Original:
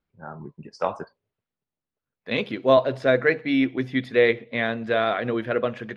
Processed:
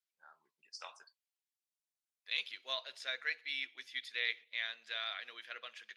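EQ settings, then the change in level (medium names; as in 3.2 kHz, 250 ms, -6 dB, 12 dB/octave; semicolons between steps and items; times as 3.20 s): band-pass filter 4.2 kHz, Q 0.62; differentiator; +2.5 dB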